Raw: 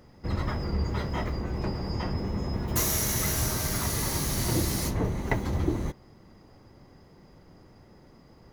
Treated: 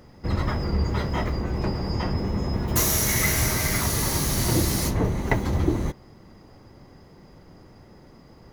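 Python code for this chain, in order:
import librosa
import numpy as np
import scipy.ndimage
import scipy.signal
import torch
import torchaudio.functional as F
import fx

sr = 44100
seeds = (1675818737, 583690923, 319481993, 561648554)

y = fx.peak_eq(x, sr, hz=2100.0, db=9.5, octaves=0.34, at=(3.07, 3.81))
y = F.gain(torch.from_numpy(y), 4.5).numpy()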